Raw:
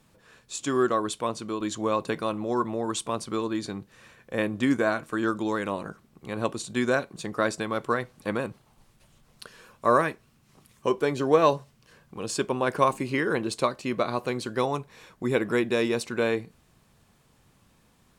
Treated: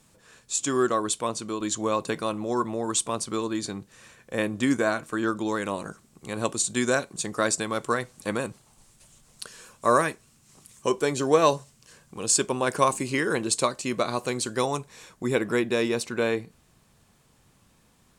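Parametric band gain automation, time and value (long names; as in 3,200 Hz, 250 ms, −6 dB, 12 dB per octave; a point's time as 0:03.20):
parametric band 7,800 Hz 1.2 octaves
0:04.92 +9.5 dB
0:05.30 +3 dB
0:05.88 +14.5 dB
0:14.75 +14.5 dB
0:15.68 +4 dB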